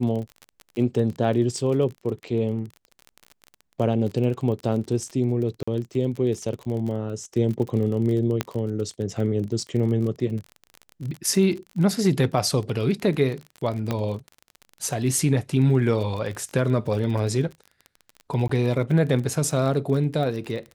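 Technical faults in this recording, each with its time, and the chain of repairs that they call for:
crackle 31 per s -30 dBFS
5.63–5.67 s: dropout 45 ms
8.41 s: pop -8 dBFS
13.91 s: pop -12 dBFS
18.48–18.49 s: dropout 14 ms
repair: de-click; interpolate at 5.63 s, 45 ms; interpolate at 18.48 s, 14 ms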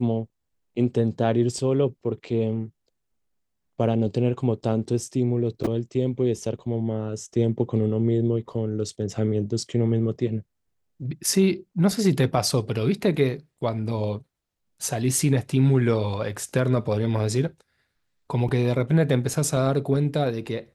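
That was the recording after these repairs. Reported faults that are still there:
13.91 s: pop

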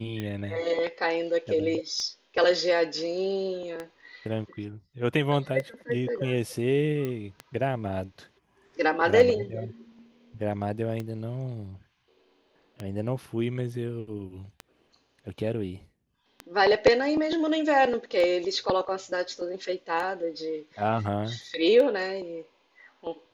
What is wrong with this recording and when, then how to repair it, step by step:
tick 33 1/3 rpm -20 dBFS
7.05 s: pop -19 dBFS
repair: de-click

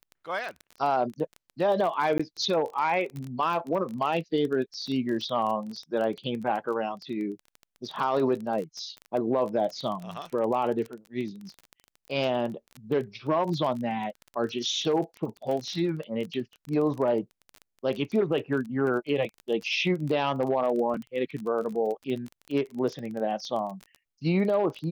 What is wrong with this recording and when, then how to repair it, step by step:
crackle 21 per s -32 dBFS
2.18–2.19 s: dropout 15 ms
20.94 s: dropout 3.7 ms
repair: de-click; interpolate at 2.18 s, 15 ms; interpolate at 20.94 s, 3.7 ms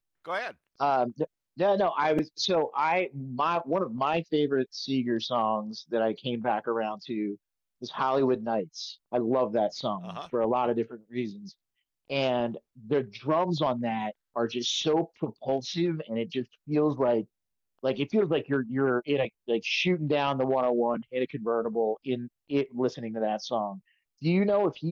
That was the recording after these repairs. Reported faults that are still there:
nothing left

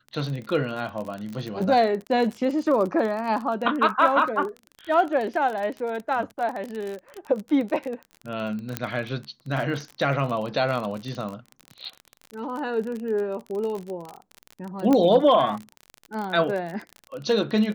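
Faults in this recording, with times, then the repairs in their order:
crackle 36 per s -29 dBFS
8.77 s: pop -9 dBFS
14.93 s: pop -10 dBFS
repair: de-click

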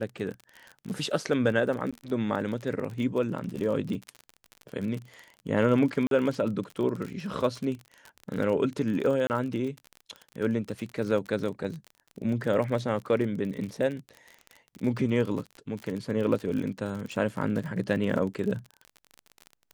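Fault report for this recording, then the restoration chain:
crackle 39 per s -33 dBFS
1.91–1.93 s: dropout 16 ms
6.07–6.11 s: dropout 42 ms
9.27–9.30 s: dropout 29 ms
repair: de-click; interpolate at 1.91 s, 16 ms; interpolate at 6.07 s, 42 ms; interpolate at 9.27 s, 29 ms

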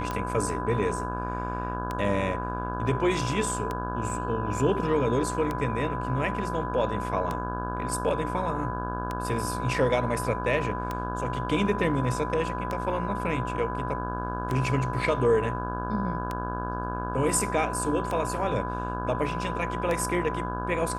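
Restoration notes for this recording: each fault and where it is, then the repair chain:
buzz 60 Hz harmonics 28 -33 dBFS
tick 33 1/3 rpm -16 dBFS
whine 1 kHz -33 dBFS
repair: de-click; band-stop 1 kHz, Q 30; de-hum 60 Hz, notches 28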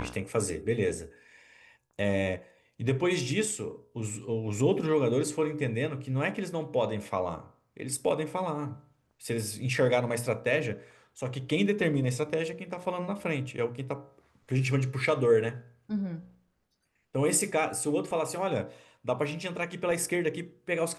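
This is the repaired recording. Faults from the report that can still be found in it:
nothing left

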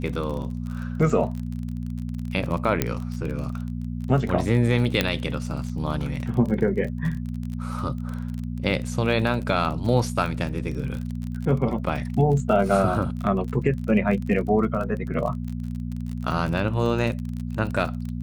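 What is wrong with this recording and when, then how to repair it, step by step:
crackle 33 per s -30 dBFS
hum 60 Hz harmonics 4 -30 dBFS
2.82 s: pop -6 dBFS
5.01 s: pop -6 dBFS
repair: de-click; de-hum 60 Hz, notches 4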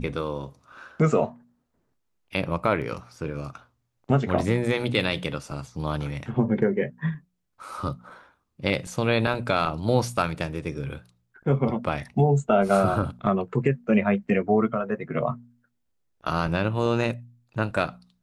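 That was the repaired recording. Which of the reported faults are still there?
2.82 s: pop
5.01 s: pop

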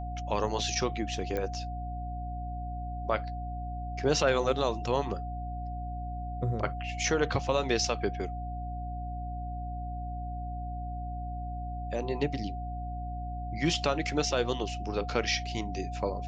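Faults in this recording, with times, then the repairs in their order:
hum 60 Hz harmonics 5 -37 dBFS
whine 720 Hz -39 dBFS
1.37 s: pop -20 dBFS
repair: de-click; band-stop 720 Hz, Q 30; de-hum 60 Hz, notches 5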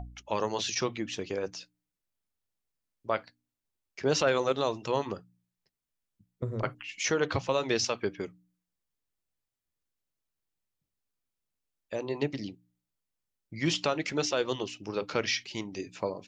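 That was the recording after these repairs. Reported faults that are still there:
nothing left

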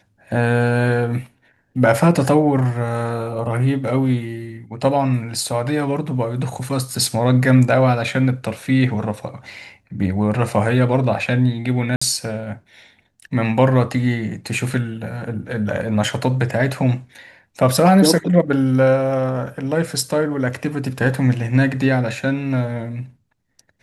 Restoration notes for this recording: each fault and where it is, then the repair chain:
11.96–12.02 s: dropout 55 ms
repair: interpolate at 11.96 s, 55 ms

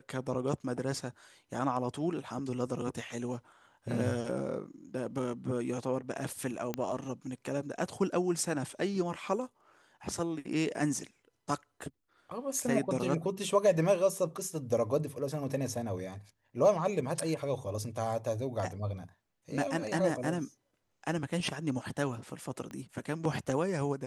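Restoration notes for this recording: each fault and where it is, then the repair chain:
6.74 s: pop -18 dBFS
22.71 s: pop -30 dBFS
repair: de-click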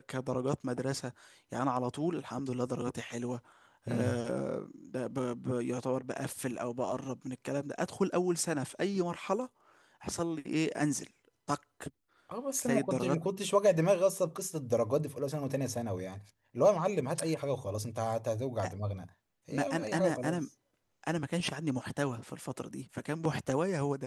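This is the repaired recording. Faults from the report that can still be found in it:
6.74 s: pop
22.71 s: pop

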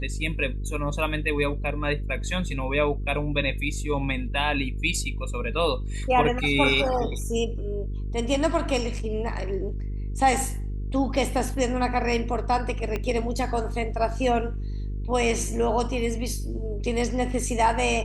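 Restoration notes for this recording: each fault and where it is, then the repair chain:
buzz 50 Hz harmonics 9 -30 dBFS
12.96 s: pop -15 dBFS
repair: de-click; de-hum 50 Hz, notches 9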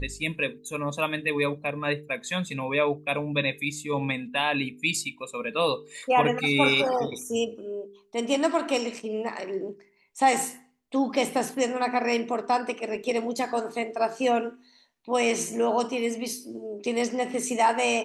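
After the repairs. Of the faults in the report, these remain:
12.96 s: pop

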